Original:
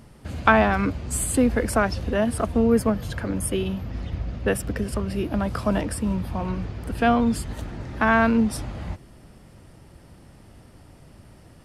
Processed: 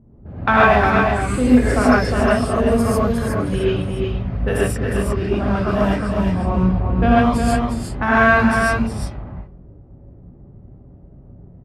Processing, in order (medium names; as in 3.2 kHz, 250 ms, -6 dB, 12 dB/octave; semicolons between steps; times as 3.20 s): level-controlled noise filter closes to 360 Hz, open at -18 dBFS; 6.36–7.11 s: tilt shelf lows +3.5 dB; on a send: delay 359 ms -5 dB; on the sum: gated-style reverb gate 170 ms rising, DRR -7.5 dB; endings held to a fixed fall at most 180 dB/s; trim -2 dB